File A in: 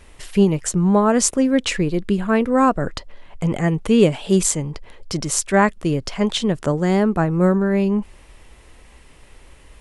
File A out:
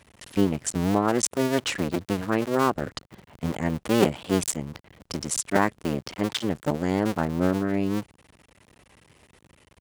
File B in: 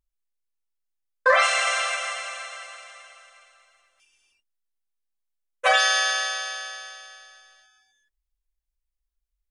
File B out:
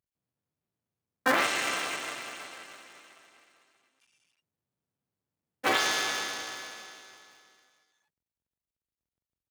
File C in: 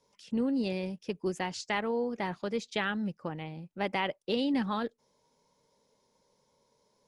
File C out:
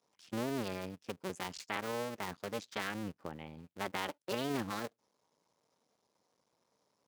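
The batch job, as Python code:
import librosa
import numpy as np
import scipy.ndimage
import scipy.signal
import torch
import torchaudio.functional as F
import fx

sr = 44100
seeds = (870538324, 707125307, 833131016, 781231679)

y = fx.cycle_switch(x, sr, every=2, mode='muted')
y = scipy.signal.sosfilt(scipy.signal.butter(2, 100.0, 'highpass', fs=sr, output='sos'), y)
y = y * 10.0 ** (-4.0 / 20.0)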